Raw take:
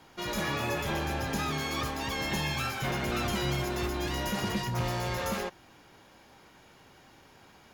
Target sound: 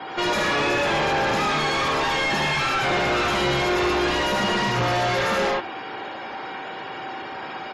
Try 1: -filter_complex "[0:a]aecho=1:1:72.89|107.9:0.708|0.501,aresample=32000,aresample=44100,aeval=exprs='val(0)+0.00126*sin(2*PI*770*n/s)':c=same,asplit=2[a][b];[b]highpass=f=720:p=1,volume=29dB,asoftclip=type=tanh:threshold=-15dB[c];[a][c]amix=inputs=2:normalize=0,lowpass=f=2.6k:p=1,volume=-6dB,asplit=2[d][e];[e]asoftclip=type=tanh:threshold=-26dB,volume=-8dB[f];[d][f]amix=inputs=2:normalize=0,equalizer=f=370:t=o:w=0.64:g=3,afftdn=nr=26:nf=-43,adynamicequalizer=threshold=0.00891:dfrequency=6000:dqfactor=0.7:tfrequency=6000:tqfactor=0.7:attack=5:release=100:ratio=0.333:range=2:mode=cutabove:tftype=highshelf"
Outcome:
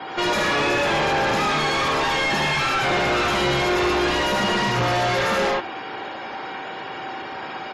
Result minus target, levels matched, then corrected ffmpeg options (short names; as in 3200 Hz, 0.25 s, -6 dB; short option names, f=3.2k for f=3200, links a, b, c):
soft clip: distortion -7 dB
-filter_complex "[0:a]aecho=1:1:72.89|107.9:0.708|0.501,aresample=32000,aresample=44100,aeval=exprs='val(0)+0.00126*sin(2*PI*770*n/s)':c=same,asplit=2[a][b];[b]highpass=f=720:p=1,volume=29dB,asoftclip=type=tanh:threshold=-15dB[c];[a][c]amix=inputs=2:normalize=0,lowpass=f=2.6k:p=1,volume=-6dB,asplit=2[d][e];[e]asoftclip=type=tanh:threshold=-38dB,volume=-8dB[f];[d][f]amix=inputs=2:normalize=0,equalizer=f=370:t=o:w=0.64:g=3,afftdn=nr=26:nf=-43,adynamicequalizer=threshold=0.00891:dfrequency=6000:dqfactor=0.7:tfrequency=6000:tqfactor=0.7:attack=5:release=100:ratio=0.333:range=2:mode=cutabove:tftype=highshelf"